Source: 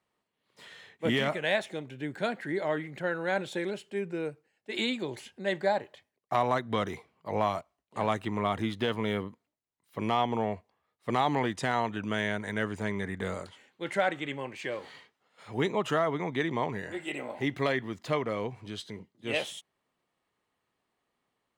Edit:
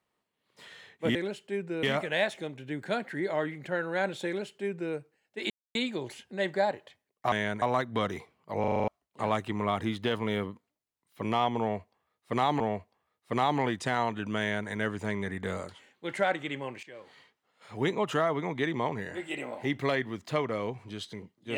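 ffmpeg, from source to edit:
ffmpeg -i in.wav -filter_complex "[0:a]asplit=15[link_01][link_02][link_03][link_04][link_05][link_06][link_07][link_08][link_09][link_10][link_11][link_12][link_13][link_14][link_15];[link_01]atrim=end=1.152[link_16];[link_02]atrim=start=3.578:end=4.262[link_17];[link_03]atrim=start=1.148:end=4.82,asetpts=PTS-STARTPTS,afade=type=out:start_time=3.668:duration=0.004:curve=hsin,apad=pad_dur=0.25[link_18];[link_04]atrim=start=4.82:end=6.392,asetpts=PTS-STARTPTS,afade=type=in:duration=0.004:curve=hsin[link_19];[link_05]atrim=start=12.158:end=12.462[link_20];[link_06]atrim=start=6.388:end=7.412[link_21];[link_07]atrim=start=7.368:end=7.412[link_22];[link_08]atrim=start=7.368:end=7.412[link_23];[link_09]atrim=start=7.368:end=7.412[link_24];[link_10]atrim=start=7.368:end=7.412[link_25];[link_11]atrim=start=7.368:end=7.412[link_26];[link_12]atrim=start=7.368:end=7.412[link_27];[link_13]atrim=start=7.648:end=11.372[link_28];[link_14]atrim=start=10.368:end=14.6,asetpts=PTS-STARTPTS,afade=type=out:start_time=4.228:duration=0.004:curve=hsin:silence=0.141254[link_29];[link_15]atrim=start=14.6,asetpts=PTS-STARTPTS,afade=type=in:duration=0.92:silence=0.141254[link_30];[link_16][link_17]acrossfade=duration=0.004:curve1=hsin:curve2=hsin[link_31];[link_18][link_19]concat=n=2:v=0:a=1[link_32];[link_31][link_32]acrossfade=duration=0.004:curve1=hsin:curve2=hsin[link_33];[link_33][link_20]acrossfade=duration=0.004:curve1=hsin:curve2=hsin[link_34];[link_34][link_21]acrossfade=duration=0.004:curve1=hsin:curve2=hsin[link_35];[link_35][link_22]acrossfade=duration=0.004:curve1=hsin:curve2=hsin[link_36];[link_36][link_23]acrossfade=duration=0.004:curve1=hsin:curve2=hsin[link_37];[link_37][link_24]acrossfade=duration=0.004:curve1=hsin:curve2=hsin[link_38];[link_38][link_25]acrossfade=duration=0.004:curve1=hsin:curve2=hsin[link_39];[link_39][link_26]acrossfade=duration=0.004:curve1=hsin:curve2=hsin[link_40];[link_40][link_27]acrossfade=duration=0.004:curve1=hsin:curve2=hsin[link_41];[link_41][link_28]acrossfade=duration=0.004:curve1=hsin:curve2=hsin[link_42];[link_29][link_30]concat=n=2:v=0:a=1[link_43];[link_42][link_43]acrossfade=duration=0.004:curve1=hsin:curve2=hsin" out.wav

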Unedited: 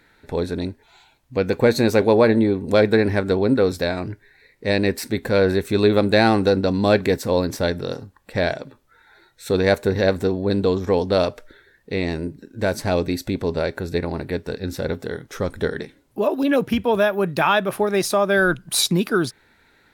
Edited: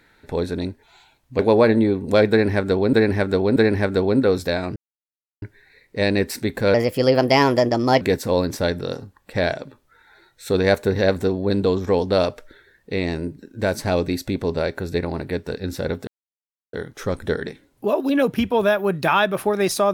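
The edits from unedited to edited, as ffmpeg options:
ffmpeg -i in.wav -filter_complex "[0:a]asplit=8[link_01][link_02][link_03][link_04][link_05][link_06][link_07][link_08];[link_01]atrim=end=1.392[link_09];[link_02]atrim=start=1.988:end=3.532[link_10];[link_03]atrim=start=2.898:end=3.532[link_11];[link_04]atrim=start=2.898:end=4.1,asetpts=PTS-STARTPTS,afade=type=out:start_time=1.198:duration=0.004:curve=hsin,apad=pad_dur=0.66[link_12];[link_05]atrim=start=4.1:end=5.424,asetpts=PTS-STARTPTS,afade=type=in:duration=0.004:curve=hsin[link_13];[link_06]atrim=start=5.42:end=7.01,asetpts=PTS-STARTPTS,asetrate=55125,aresample=44100,atrim=end_sample=56095,asetpts=PTS-STARTPTS[link_14];[link_07]atrim=start=7.006:end=15.07,asetpts=PTS-STARTPTS,afade=type=out:start_time=8.06:duration=0.004:curve=hsin,apad=pad_dur=0.66[link_15];[link_08]atrim=start=15.07,asetpts=PTS-STARTPTS,afade=type=in:duration=0.004:curve=hsin[link_16];[link_09][link_10]acrossfade=duration=0.004:curve1=hsin:curve2=hsin[link_17];[link_17][link_11]acrossfade=duration=0.004:curve1=hsin:curve2=hsin[link_18];[link_12][link_13]concat=n=2:v=0:a=1[link_19];[link_18][link_19]acrossfade=duration=0.004:curve1=hsin:curve2=hsin[link_20];[link_20][link_14]acrossfade=duration=0.004:curve1=hsin:curve2=hsin[link_21];[link_15][link_16]concat=n=2:v=0:a=1[link_22];[link_21][link_22]acrossfade=duration=0.004:curve1=hsin:curve2=hsin" out.wav

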